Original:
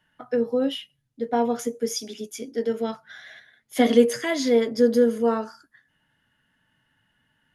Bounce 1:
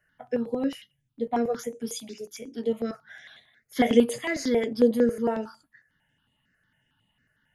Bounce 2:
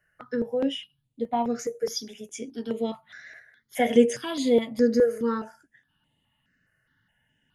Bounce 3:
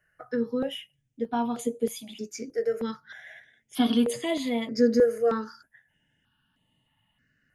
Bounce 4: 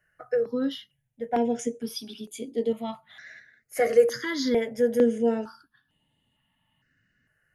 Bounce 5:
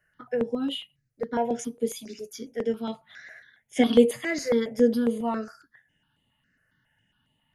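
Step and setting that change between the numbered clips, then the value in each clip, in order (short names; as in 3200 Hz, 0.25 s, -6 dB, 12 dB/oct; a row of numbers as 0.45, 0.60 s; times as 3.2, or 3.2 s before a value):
step phaser, rate: 11, 4.8, 3.2, 2.2, 7.3 Hz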